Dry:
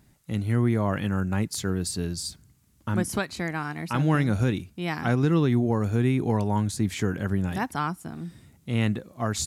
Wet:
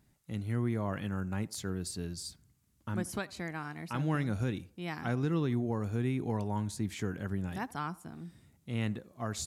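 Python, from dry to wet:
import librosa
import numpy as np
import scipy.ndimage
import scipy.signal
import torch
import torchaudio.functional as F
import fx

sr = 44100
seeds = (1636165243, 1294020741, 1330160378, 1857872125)

y = fx.echo_banded(x, sr, ms=81, feedback_pct=43, hz=680.0, wet_db=-20.0)
y = y * librosa.db_to_amplitude(-9.0)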